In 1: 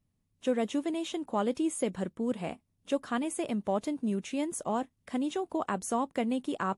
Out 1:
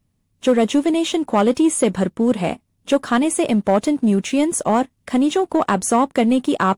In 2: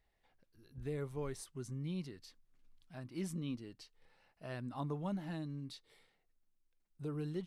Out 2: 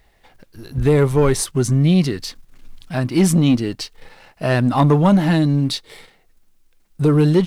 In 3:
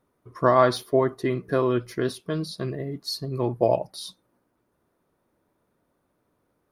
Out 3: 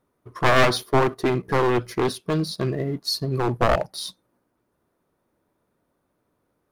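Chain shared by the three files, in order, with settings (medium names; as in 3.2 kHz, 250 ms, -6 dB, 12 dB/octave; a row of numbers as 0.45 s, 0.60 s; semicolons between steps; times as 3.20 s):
one-sided wavefolder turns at -20.5 dBFS; waveshaping leveller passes 1; peak normalisation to -6 dBFS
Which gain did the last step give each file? +11.5 dB, +23.5 dB, +1.5 dB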